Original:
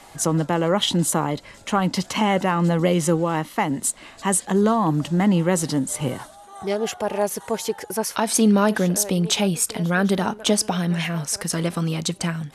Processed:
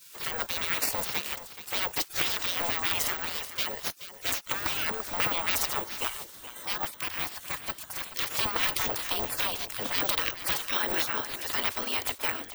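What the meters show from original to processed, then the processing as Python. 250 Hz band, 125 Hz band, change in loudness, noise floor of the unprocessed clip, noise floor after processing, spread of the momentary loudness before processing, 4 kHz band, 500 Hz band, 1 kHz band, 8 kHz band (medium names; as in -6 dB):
-23.5 dB, -23.5 dB, -7.0 dB, -46 dBFS, -48 dBFS, 8 LU, -3.0 dB, -16.0 dB, -9.5 dB, -10.5 dB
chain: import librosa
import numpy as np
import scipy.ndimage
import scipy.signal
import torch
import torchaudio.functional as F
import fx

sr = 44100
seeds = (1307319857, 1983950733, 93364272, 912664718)

p1 = np.minimum(x, 2.0 * 10.0 ** (-17.5 / 20.0) - x)
p2 = fx.level_steps(p1, sr, step_db=13)
p3 = p1 + F.gain(torch.from_numpy(p2), -1.5).numpy()
p4 = fx.spec_gate(p3, sr, threshold_db=-20, keep='weak')
p5 = p4 + 10.0 ** (-13.0 / 20.0) * np.pad(p4, (int(427 * sr / 1000.0), 0))[:len(p4)]
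y = (np.kron(scipy.signal.resample_poly(p5, 1, 2), np.eye(2)[0]) * 2)[:len(p5)]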